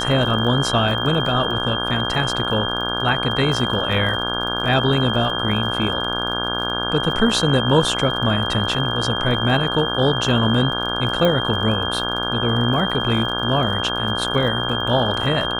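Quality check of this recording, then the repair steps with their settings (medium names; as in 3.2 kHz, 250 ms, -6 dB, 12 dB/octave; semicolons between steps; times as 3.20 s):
buzz 60 Hz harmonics 28 -26 dBFS
crackle 44 per s -29 dBFS
whine 3.2 kHz -24 dBFS
11.25 s: pop -8 dBFS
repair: de-click; de-hum 60 Hz, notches 28; band-stop 3.2 kHz, Q 30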